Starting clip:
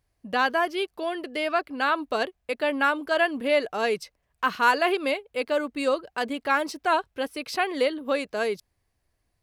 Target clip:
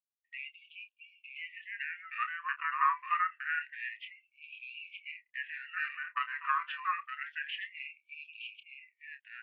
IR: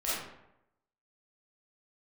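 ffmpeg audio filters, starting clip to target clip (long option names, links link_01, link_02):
-filter_complex "[0:a]agate=range=-40dB:threshold=-41dB:ratio=16:detection=peak,acompressor=threshold=-23dB:ratio=3,asetrate=23361,aresample=44100,atempo=1.88775,highpass=frequency=220:width_type=q:width=0.5412,highpass=frequency=220:width_type=q:width=1.307,lowpass=frequency=2600:width_type=q:width=0.5176,lowpass=frequency=2600:width_type=q:width=0.7071,lowpass=frequency=2600:width_type=q:width=1.932,afreqshift=360,asplit=2[link_01][link_02];[link_02]adelay=29,volume=-10.5dB[link_03];[link_01][link_03]amix=inputs=2:normalize=0,aecho=1:1:916:0.447,afftfilt=real='re*gte(b*sr/1024,950*pow(2300/950,0.5+0.5*sin(2*PI*0.27*pts/sr)))':imag='im*gte(b*sr/1024,950*pow(2300/950,0.5+0.5*sin(2*PI*0.27*pts/sr)))':win_size=1024:overlap=0.75"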